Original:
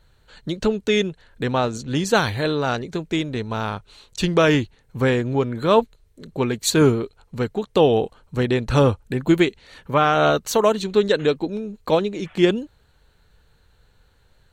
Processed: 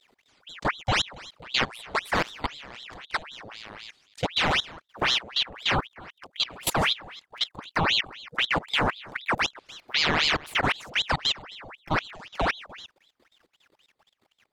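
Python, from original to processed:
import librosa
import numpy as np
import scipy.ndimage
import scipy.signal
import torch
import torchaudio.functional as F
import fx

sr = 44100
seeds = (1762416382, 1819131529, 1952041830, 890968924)

y = fx.reverse_delay(x, sr, ms=218, wet_db=-13)
y = scipy.signal.sosfilt(scipy.signal.butter(2, 46.0, 'highpass', fs=sr, output='sos'), y)
y = fx.level_steps(y, sr, step_db=20)
y = fx.spec_box(y, sr, start_s=8.32, length_s=1.1, low_hz=1600.0, high_hz=4000.0, gain_db=-8)
y = fx.ring_lfo(y, sr, carrier_hz=2000.0, swing_pct=85, hz=3.9)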